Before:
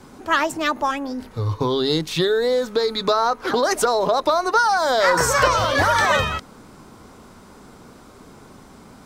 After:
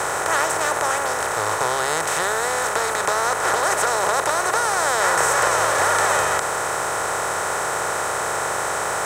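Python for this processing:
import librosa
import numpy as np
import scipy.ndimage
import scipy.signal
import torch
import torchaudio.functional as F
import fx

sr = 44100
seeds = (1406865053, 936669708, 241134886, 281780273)

y = fx.bin_compress(x, sr, power=0.2)
y = fx.low_shelf(y, sr, hz=210.0, db=-11.0)
y = np.sign(y) * np.maximum(np.abs(y) - 10.0 ** (-36.0 / 20.0), 0.0)
y = fx.graphic_eq(y, sr, hz=(250, 4000, 8000), db=(-11, -9, 7))
y = y * 10.0 ** (-8.0 / 20.0)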